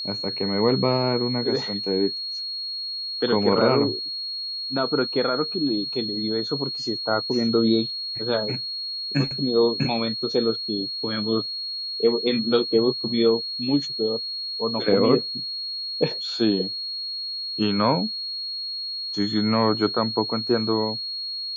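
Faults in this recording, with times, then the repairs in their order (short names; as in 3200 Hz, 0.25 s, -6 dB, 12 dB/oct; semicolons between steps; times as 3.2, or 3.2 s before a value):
tone 4300 Hz -28 dBFS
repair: notch 4300 Hz, Q 30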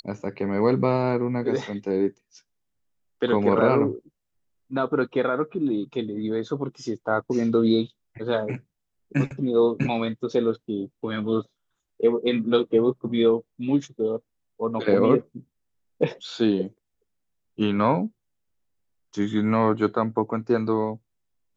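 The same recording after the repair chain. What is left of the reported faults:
none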